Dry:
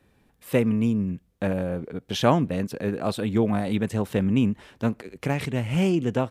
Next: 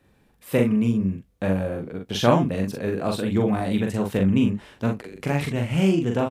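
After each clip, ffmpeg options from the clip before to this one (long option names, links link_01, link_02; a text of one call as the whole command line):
ffmpeg -i in.wav -af "aecho=1:1:42|62:0.668|0.158" out.wav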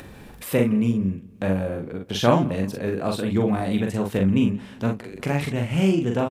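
ffmpeg -i in.wav -filter_complex "[0:a]asplit=2[link_01][link_02];[link_02]adelay=175,lowpass=frequency=4900:poles=1,volume=-22dB,asplit=2[link_03][link_04];[link_04]adelay=175,lowpass=frequency=4900:poles=1,volume=0.37,asplit=2[link_05][link_06];[link_06]adelay=175,lowpass=frequency=4900:poles=1,volume=0.37[link_07];[link_01][link_03][link_05][link_07]amix=inputs=4:normalize=0,acompressor=mode=upward:threshold=-27dB:ratio=2.5" out.wav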